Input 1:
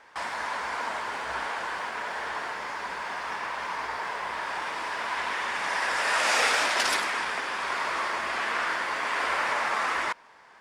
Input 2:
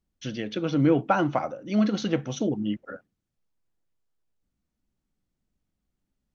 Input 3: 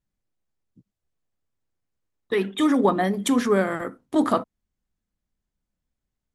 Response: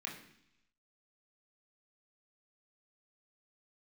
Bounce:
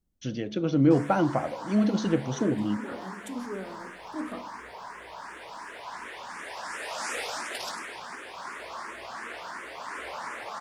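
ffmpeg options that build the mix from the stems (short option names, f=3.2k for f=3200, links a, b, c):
-filter_complex "[0:a]asplit=2[a][b];[b]afreqshift=2.8[c];[a][c]amix=inputs=2:normalize=1,adelay=750,volume=-1.5dB[d];[1:a]volume=2dB,asplit=2[e][f];[2:a]volume=-15.5dB,asplit=2[g][h];[h]volume=-4.5dB[i];[f]apad=whole_len=279696[j];[g][j]sidechaincompress=threshold=-31dB:ratio=8:attack=16:release=923[k];[3:a]atrim=start_sample=2205[l];[i][l]afir=irnorm=-1:irlink=0[m];[d][e][k][m]amix=inputs=4:normalize=0,equalizer=f=2.2k:w=0.42:g=-7.5,bandreject=f=71.81:t=h:w=4,bandreject=f=143.62:t=h:w=4,bandreject=f=215.43:t=h:w=4,bandreject=f=287.24:t=h:w=4,bandreject=f=359.05:t=h:w=4,bandreject=f=430.86:t=h:w=4,bandreject=f=502.67:t=h:w=4,bandreject=f=574.48:t=h:w=4,bandreject=f=646.29:t=h:w=4,bandreject=f=718.1:t=h:w=4,bandreject=f=789.91:t=h:w=4,bandreject=f=861.72:t=h:w=4,bandreject=f=933.53:t=h:w=4,bandreject=f=1.00534k:t=h:w=4,bandreject=f=1.07715k:t=h:w=4,bandreject=f=1.14896k:t=h:w=4"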